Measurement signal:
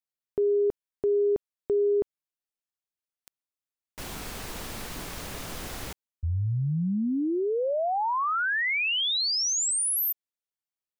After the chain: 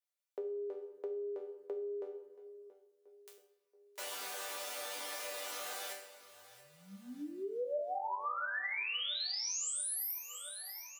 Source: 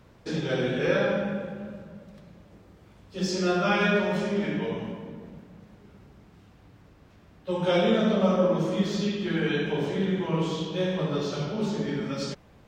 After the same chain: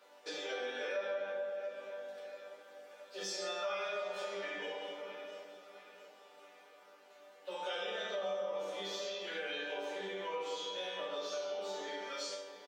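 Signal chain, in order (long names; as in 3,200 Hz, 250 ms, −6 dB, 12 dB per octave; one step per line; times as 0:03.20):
Chebyshev high-pass filter 480 Hz, order 3
resonators tuned to a chord G3 major, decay 0.41 s
on a send: repeating echo 679 ms, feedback 50%, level −21 dB
on the sum: rectangular room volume 2,200 cubic metres, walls mixed, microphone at 0.49 metres
in parallel at 0 dB: brickwall limiter −40.5 dBFS
on the sum: downward compressor 2.5 to 1, threshold −53 dBFS
level +12.5 dB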